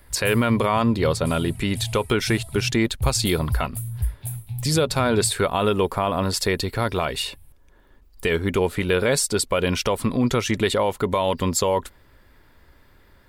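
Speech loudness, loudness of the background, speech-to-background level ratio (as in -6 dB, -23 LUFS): -22.5 LUFS, -32.0 LUFS, 9.5 dB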